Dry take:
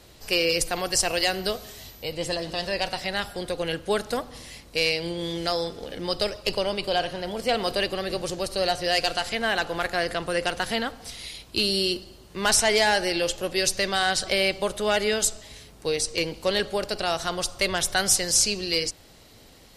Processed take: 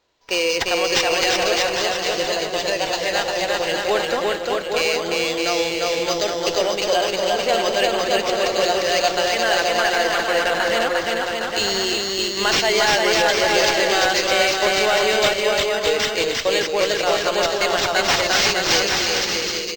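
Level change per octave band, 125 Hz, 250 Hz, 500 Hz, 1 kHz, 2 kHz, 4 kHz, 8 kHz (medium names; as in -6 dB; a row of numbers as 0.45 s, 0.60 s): 0.0 dB, +4.0 dB, +7.5 dB, +8.5 dB, +8.0 dB, +6.5 dB, +2.0 dB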